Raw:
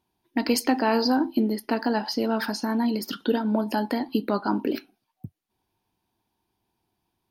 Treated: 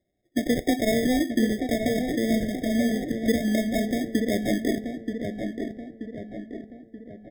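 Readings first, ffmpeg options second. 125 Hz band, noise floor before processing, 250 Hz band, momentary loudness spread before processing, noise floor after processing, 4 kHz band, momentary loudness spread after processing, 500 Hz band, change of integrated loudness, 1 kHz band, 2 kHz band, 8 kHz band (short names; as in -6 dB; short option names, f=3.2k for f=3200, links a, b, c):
+4.0 dB, -79 dBFS, +1.5 dB, 6 LU, -56 dBFS, -2.5 dB, 15 LU, +1.0 dB, 0.0 dB, -8.5 dB, +0.5 dB, +1.0 dB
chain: -filter_complex "[0:a]acrusher=samples=29:mix=1:aa=0.000001,asplit=2[a][b];[b]adelay=930,lowpass=f=2.2k:p=1,volume=-6dB,asplit=2[c][d];[d]adelay=930,lowpass=f=2.2k:p=1,volume=0.51,asplit=2[e][f];[f]adelay=930,lowpass=f=2.2k:p=1,volume=0.51,asplit=2[g][h];[h]adelay=930,lowpass=f=2.2k:p=1,volume=0.51,asplit=2[i][j];[j]adelay=930,lowpass=f=2.2k:p=1,volume=0.51,asplit=2[k][l];[l]adelay=930,lowpass=f=2.2k:p=1,volume=0.51[m];[a][c][e][g][i][k][m]amix=inputs=7:normalize=0,afftfilt=real='re*eq(mod(floor(b*sr/1024/760),2),0)':imag='im*eq(mod(floor(b*sr/1024/760),2),0)':win_size=1024:overlap=0.75"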